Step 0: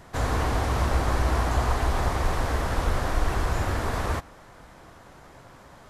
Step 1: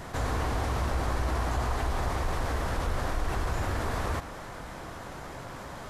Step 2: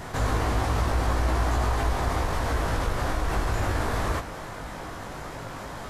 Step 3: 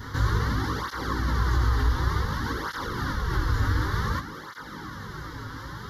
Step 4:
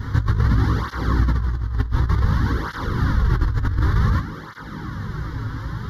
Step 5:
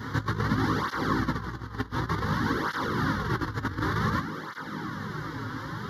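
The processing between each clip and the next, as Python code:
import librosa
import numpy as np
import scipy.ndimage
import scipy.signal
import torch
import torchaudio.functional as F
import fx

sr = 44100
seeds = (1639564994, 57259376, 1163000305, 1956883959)

y1 = fx.env_flatten(x, sr, amount_pct=50)
y1 = y1 * librosa.db_to_amplitude(-7.0)
y2 = fx.doubler(y1, sr, ms=19.0, db=-5.5)
y2 = y2 * librosa.db_to_amplitude(3.0)
y3 = fx.fixed_phaser(y2, sr, hz=2500.0, stages=6)
y3 = fx.flanger_cancel(y3, sr, hz=0.55, depth_ms=6.0)
y3 = y3 * librosa.db_to_amplitude(5.0)
y4 = fx.bass_treble(y3, sr, bass_db=10, treble_db=-6)
y4 = fx.over_compress(y4, sr, threshold_db=-17.0, ratio=-0.5)
y5 = scipy.signal.sosfilt(scipy.signal.butter(2, 200.0, 'highpass', fs=sr, output='sos'), y4)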